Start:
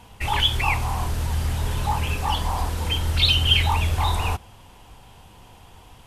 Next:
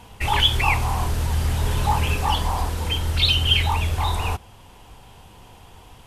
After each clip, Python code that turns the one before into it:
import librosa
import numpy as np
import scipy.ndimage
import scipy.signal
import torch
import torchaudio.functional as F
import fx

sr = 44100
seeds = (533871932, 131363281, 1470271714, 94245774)

y = fx.peak_eq(x, sr, hz=420.0, db=2.0, octaves=0.45)
y = fx.rider(y, sr, range_db=10, speed_s=2.0)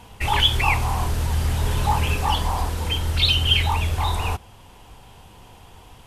y = x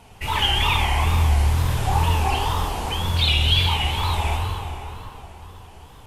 y = fx.rev_plate(x, sr, seeds[0], rt60_s=3.7, hf_ratio=0.65, predelay_ms=0, drr_db=-2.5)
y = fx.wow_flutter(y, sr, seeds[1], rate_hz=2.1, depth_cents=140.0)
y = y * 10.0 ** (-4.0 / 20.0)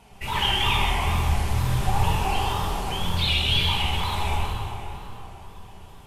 y = x + 10.0 ** (-5.5 / 20.0) * np.pad(x, (int(128 * sr / 1000.0), 0))[:len(x)]
y = fx.room_shoebox(y, sr, seeds[2], volume_m3=440.0, walls='furnished', distance_m=1.2)
y = y * 10.0 ** (-4.5 / 20.0)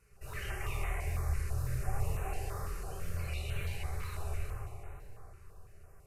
y = fx.fixed_phaser(x, sr, hz=900.0, stages=6)
y = fx.filter_held_notch(y, sr, hz=6.0, low_hz=690.0, high_hz=4900.0)
y = y * 10.0 ** (-9.0 / 20.0)